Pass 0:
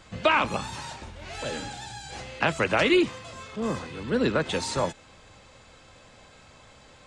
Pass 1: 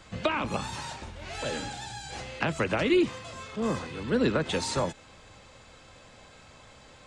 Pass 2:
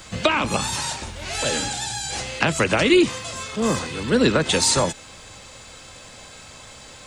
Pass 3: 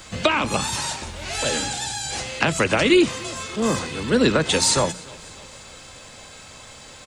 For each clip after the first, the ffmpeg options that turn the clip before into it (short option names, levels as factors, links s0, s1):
-filter_complex "[0:a]acrossover=split=410[s0][s1];[s1]acompressor=threshold=0.0501:ratio=10[s2];[s0][s2]amix=inputs=2:normalize=0"
-af "crystalizer=i=2.5:c=0,volume=2.24"
-af "bandreject=f=60:t=h:w=6,bandreject=f=120:t=h:w=6,bandreject=f=180:t=h:w=6,aecho=1:1:295|590|885|1180:0.0668|0.0388|0.0225|0.013"